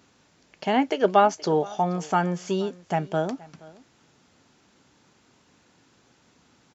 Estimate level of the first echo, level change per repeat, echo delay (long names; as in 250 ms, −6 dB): −22.0 dB, repeats not evenly spaced, 474 ms